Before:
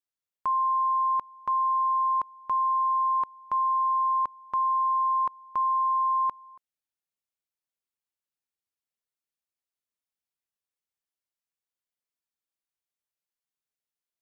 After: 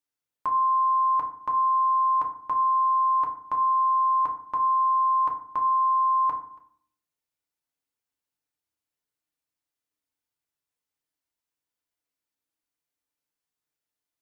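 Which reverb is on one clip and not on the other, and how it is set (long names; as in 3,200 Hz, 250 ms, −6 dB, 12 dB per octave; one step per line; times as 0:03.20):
feedback delay network reverb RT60 0.56 s, low-frequency decay 1.4×, high-frequency decay 0.45×, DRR 0.5 dB
level +1 dB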